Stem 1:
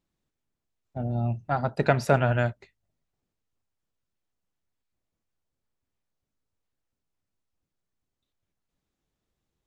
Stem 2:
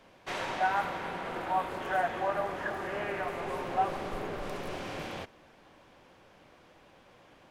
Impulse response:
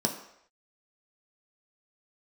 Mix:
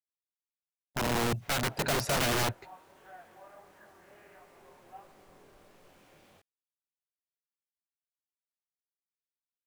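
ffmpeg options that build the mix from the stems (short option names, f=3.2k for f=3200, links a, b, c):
-filter_complex "[0:a]agate=range=-13dB:threshold=-45dB:ratio=16:detection=peak,volume=0.5dB[a];[1:a]flanger=delay=19:depth=7.6:speed=1.5,adelay=1150,volume=-19dB[b];[a][b]amix=inputs=2:normalize=0,asoftclip=type=hard:threshold=-23dB,acrusher=bits=10:mix=0:aa=0.000001,aeval=exprs='(mod(16.8*val(0)+1,2)-1)/16.8':c=same"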